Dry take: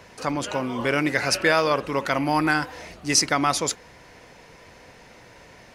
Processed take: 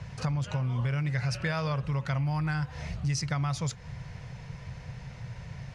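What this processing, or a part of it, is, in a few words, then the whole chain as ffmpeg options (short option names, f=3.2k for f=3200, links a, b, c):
jukebox: -af "lowpass=7.4k,lowshelf=f=200:t=q:w=3:g=14,acompressor=threshold=-25dB:ratio=6,volume=-2.5dB"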